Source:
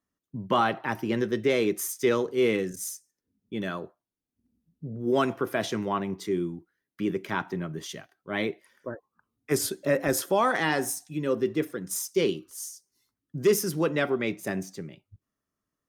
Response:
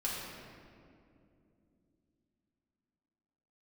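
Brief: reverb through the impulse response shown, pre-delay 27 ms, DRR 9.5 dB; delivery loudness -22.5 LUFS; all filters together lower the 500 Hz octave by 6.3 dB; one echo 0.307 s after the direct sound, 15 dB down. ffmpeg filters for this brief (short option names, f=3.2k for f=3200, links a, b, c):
-filter_complex "[0:a]equalizer=f=500:t=o:g=-8.5,aecho=1:1:307:0.178,asplit=2[a][b];[1:a]atrim=start_sample=2205,adelay=27[c];[b][c]afir=irnorm=-1:irlink=0,volume=-14dB[d];[a][d]amix=inputs=2:normalize=0,volume=8dB"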